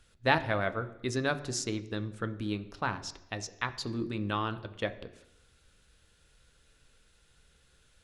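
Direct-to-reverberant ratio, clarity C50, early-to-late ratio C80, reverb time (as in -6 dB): 9.0 dB, 15.0 dB, 17.0 dB, 0.80 s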